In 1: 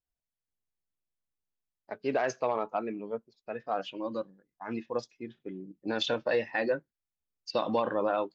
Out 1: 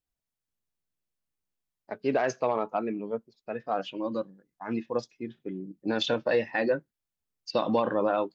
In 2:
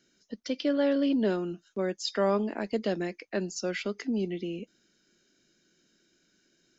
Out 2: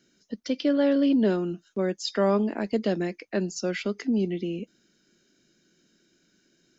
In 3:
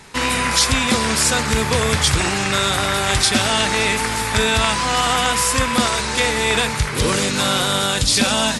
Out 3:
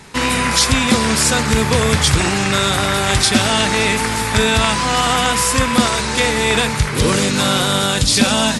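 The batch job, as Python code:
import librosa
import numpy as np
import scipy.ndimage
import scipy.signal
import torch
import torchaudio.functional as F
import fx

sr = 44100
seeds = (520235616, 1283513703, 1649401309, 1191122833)

y = fx.peak_eq(x, sr, hz=180.0, db=4.0, octaves=2.2)
y = y * librosa.db_to_amplitude(1.5)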